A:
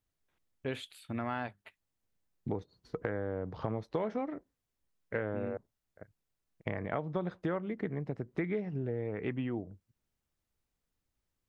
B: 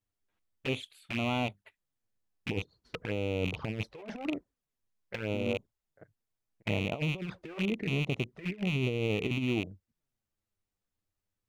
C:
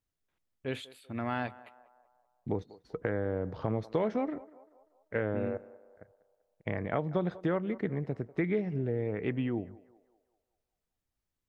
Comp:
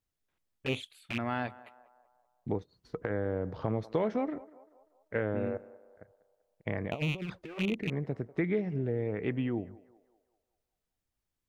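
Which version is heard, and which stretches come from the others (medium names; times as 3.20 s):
C
0.66–1.18 s: from B
2.58–3.10 s: from A
6.91–7.90 s: from B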